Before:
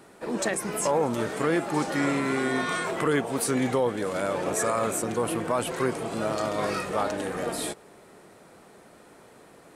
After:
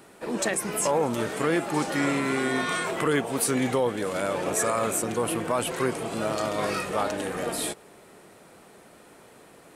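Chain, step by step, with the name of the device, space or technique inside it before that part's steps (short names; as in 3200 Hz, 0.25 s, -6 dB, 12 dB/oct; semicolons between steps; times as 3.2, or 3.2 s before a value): presence and air boost (bell 2800 Hz +3 dB 0.77 oct; high shelf 9600 Hz +6.5 dB)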